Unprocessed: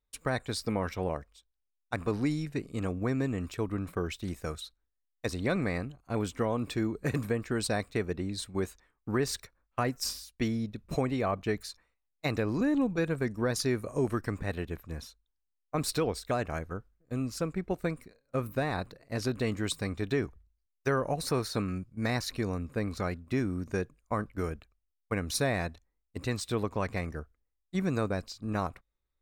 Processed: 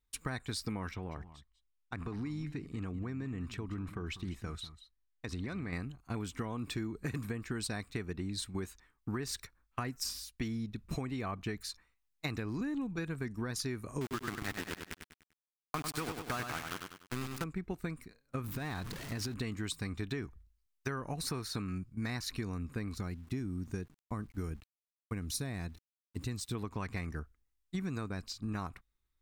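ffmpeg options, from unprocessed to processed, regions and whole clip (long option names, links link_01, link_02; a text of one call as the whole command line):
ffmpeg -i in.wav -filter_complex "[0:a]asettb=1/sr,asplit=3[link_01][link_02][link_03];[link_01]atrim=end=0.914[link_04];[link_02]atrim=start=0.91:end=5.73,asetpts=PTS-STARTPTS,afade=type=in:duration=0.004:curve=qsin,afade=type=out:start_time=4.816:duration=0.004:curve=qsin,aemphasis=mode=reproduction:type=50kf,acompressor=threshold=-35dB:ratio=4:attack=3.2:release=140:knee=1:detection=peak,aecho=1:1:195|196:0.106|0.15,atrim=end_sample=212562[link_05];[link_03]atrim=start=5.726[link_06];[link_04][link_05]acrossfade=duration=0.004:curve1=hsin:curve2=qsin[link_07];[link_07][link_06]acrossfade=duration=0.004:curve1=qsin:curve2=hsin,asettb=1/sr,asplit=3[link_08][link_09][link_10];[link_08]atrim=end=14.014[link_11];[link_09]atrim=start=14.01:end=17.44,asetpts=PTS-STARTPTS,afade=type=in:duration=0.004:curve=qsin,afade=type=out:start_time=3.426:duration=0.004:curve=qsin,equalizer=frequency=1400:width_type=o:width=1.7:gain=6.5,aeval=exprs='val(0)*gte(abs(val(0)),0.0355)':channel_layout=same,aecho=1:1:98|196|294|392:0.447|0.17|0.0645|0.0245,atrim=end_sample=151263[link_12];[link_10]atrim=start=17.436[link_13];[link_11][link_12]acrossfade=duration=0.004:curve1=hsin:curve2=qsin[link_14];[link_14][link_13]acrossfade=duration=0.004:curve1=qsin:curve2=hsin,asettb=1/sr,asplit=3[link_15][link_16][link_17];[link_15]atrim=end=18.444[link_18];[link_16]atrim=start=18.44:end=19.34,asetpts=PTS-STARTPTS,afade=type=in:duration=0.004:curve=qsin,afade=type=out:start_time=0.896:duration=0.004:curve=qsin,aeval=exprs='val(0)+0.5*0.0112*sgn(val(0))':channel_layout=same,acompressor=threshold=-32dB:ratio=6:attack=3.2:release=140:knee=1:detection=peak[link_19];[link_17]atrim=start=19.336[link_20];[link_18][link_19]acrossfade=duration=0.004:curve1=hsin:curve2=qsin[link_21];[link_21][link_20]acrossfade=duration=0.004:curve1=qsin:curve2=hsin,asettb=1/sr,asplit=3[link_22][link_23][link_24];[link_22]atrim=end=22.954[link_25];[link_23]atrim=start=22.95:end=26.55,asetpts=PTS-STARTPTS,afade=type=in:duration=0.004:curve=qsin,afade=type=out:start_time=3.596:duration=0.004:curve=qsin,equalizer=frequency=1600:width=0.39:gain=-8,aeval=exprs='val(0)*gte(abs(val(0)),0.00112)':channel_layout=same[link_26];[link_24]atrim=start=26.546[link_27];[link_25][link_26]acrossfade=duration=0.004:curve1=hsin:curve2=qsin[link_28];[link_28][link_27]acrossfade=duration=0.004:curve1=qsin:curve2=hsin,equalizer=frequency=560:width=1.8:gain=-11,acompressor=threshold=-36dB:ratio=6,volume=2dB" out.wav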